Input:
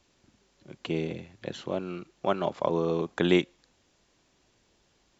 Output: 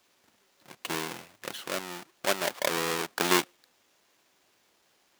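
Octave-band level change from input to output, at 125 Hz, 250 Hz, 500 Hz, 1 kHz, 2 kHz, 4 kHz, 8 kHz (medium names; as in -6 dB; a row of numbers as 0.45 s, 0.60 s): -9.5 dB, -6.5 dB, -4.5 dB, +2.0 dB, +6.0 dB, +6.0 dB, no reading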